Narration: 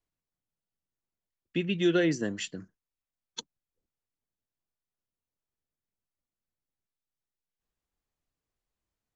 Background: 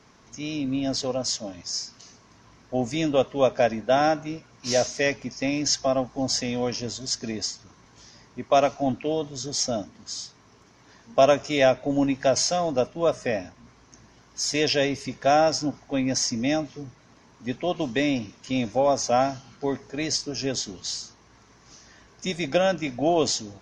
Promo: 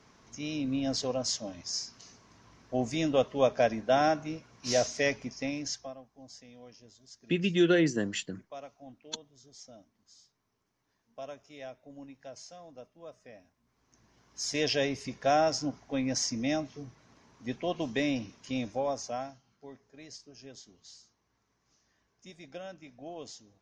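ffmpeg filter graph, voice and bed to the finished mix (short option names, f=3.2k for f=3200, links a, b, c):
-filter_complex "[0:a]adelay=5750,volume=1dB[a];[1:a]volume=14.5dB,afade=t=out:st=5.18:d=0.79:silence=0.0944061,afade=t=in:st=13.65:d=0.99:silence=0.112202,afade=t=out:st=18.37:d=1.03:silence=0.16788[b];[a][b]amix=inputs=2:normalize=0"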